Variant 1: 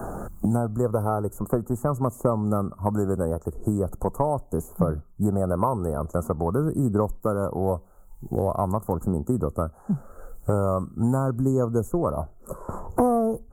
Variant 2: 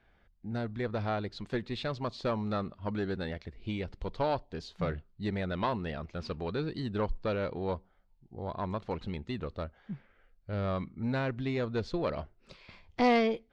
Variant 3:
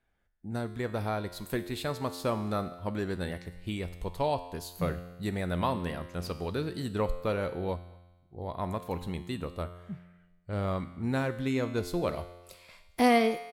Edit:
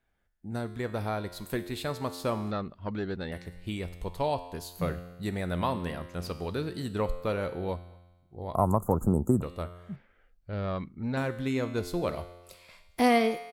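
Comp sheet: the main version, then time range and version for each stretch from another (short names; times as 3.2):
3
2.51–3.32 from 2
8.55–9.42 from 1
9.96–11.17 from 2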